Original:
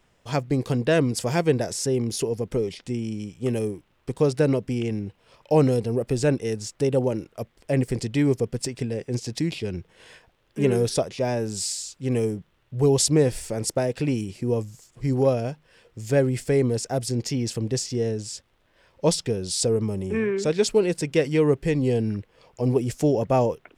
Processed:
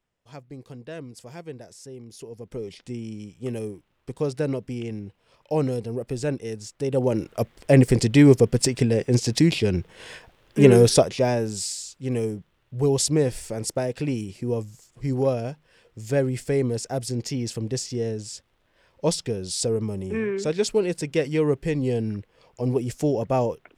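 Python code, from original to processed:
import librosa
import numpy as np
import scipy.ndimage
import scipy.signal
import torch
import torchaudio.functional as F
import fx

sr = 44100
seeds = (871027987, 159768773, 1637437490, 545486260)

y = fx.gain(x, sr, db=fx.line((2.09, -17.0), (2.78, -5.0), (6.81, -5.0), (7.3, 7.5), (10.92, 7.5), (11.7, -2.0)))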